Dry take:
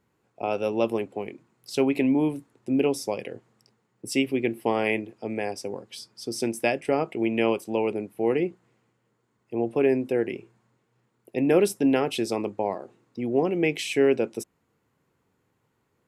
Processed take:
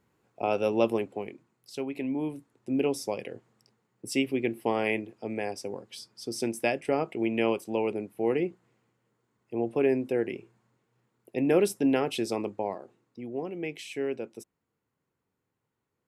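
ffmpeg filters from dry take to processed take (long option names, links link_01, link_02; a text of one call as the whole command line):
ffmpeg -i in.wav -af "volume=9dB,afade=type=out:start_time=0.81:duration=1.04:silence=0.251189,afade=type=in:start_time=1.85:duration=1.15:silence=0.354813,afade=type=out:start_time=12.4:duration=0.92:silence=0.398107" out.wav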